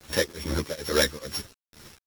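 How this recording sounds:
a buzz of ramps at a fixed pitch in blocks of 8 samples
tremolo triangle 2.3 Hz, depth 100%
a quantiser's noise floor 8 bits, dither none
a shimmering, thickened sound

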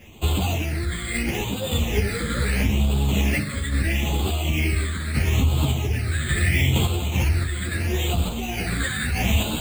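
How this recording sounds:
aliases and images of a low sample rate 5,400 Hz, jitter 0%
phaser sweep stages 8, 0.76 Hz, lowest notch 800–1,800 Hz
sample-and-hold tremolo
a shimmering, thickened sound

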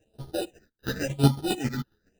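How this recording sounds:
aliases and images of a low sample rate 1,100 Hz, jitter 0%
phaser sweep stages 6, 0.93 Hz, lowest notch 620–2,200 Hz
chopped level 7.3 Hz, depth 65%, duty 20%
a shimmering, thickened sound

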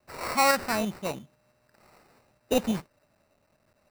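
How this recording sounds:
a quantiser's noise floor 12 bits, dither none
tremolo saw up 5.9 Hz, depth 35%
aliases and images of a low sample rate 3,300 Hz, jitter 0%

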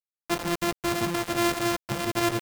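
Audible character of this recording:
a buzz of ramps at a fixed pitch in blocks of 128 samples
tremolo saw up 2.6 Hz, depth 50%
a quantiser's noise floor 6 bits, dither none

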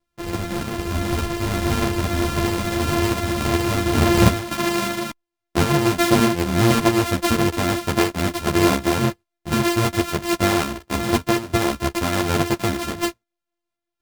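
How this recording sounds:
a buzz of ramps at a fixed pitch in blocks of 128 samples
tremolo saw up 1.6 Hz, depth 35%
a shimmering, thickened sound

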